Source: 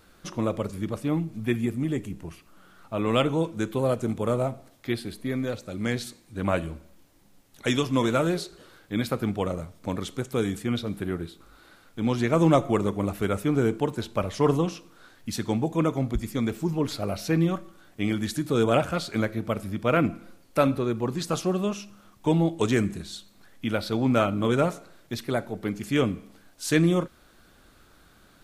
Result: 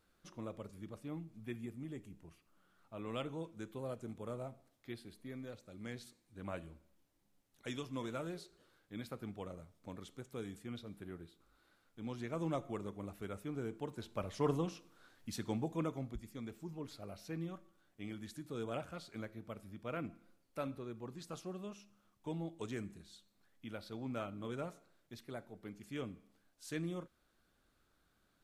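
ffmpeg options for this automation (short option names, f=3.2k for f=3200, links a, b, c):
-af "volume=-12dB,afade=t=in:st=13.7:d=0.73:silence=0.473151,afade=t=out:st=15.64:d=0.6:silence=0.421697"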